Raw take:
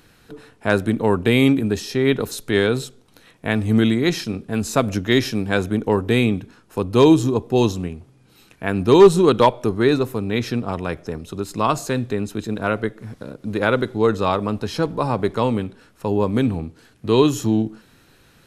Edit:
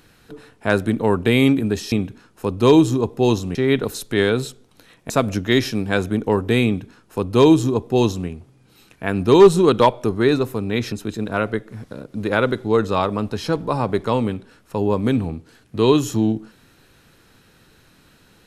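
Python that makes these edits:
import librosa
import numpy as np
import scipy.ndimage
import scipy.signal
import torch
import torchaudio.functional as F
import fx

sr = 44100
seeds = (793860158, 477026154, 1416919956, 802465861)

y = fx.edit(x, sr, fx.cut(start_s=3.47, length_s=1.23),
    fx.duplicate(start_s=6.25, length_s=1.63, to_s=1.92),
    fx.cut(start_s=10.52, length_s=1.7), tone=tone)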